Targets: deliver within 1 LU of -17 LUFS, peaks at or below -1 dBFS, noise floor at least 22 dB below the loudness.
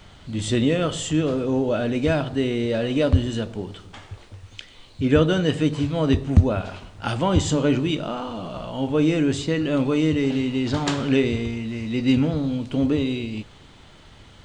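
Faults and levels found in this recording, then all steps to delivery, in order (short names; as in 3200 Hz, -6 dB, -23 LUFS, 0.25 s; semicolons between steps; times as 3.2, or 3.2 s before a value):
loudness -22.5 LUFS; peak -1.5 dBFS; loudness target -17.0 LUFS
-> gain +5.5 dB; limiter -1 dBFS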